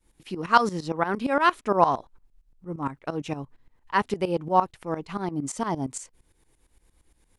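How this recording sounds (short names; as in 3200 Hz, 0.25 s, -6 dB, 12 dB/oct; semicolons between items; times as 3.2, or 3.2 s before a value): tremolo saw up 8.7 Hz, depth 85%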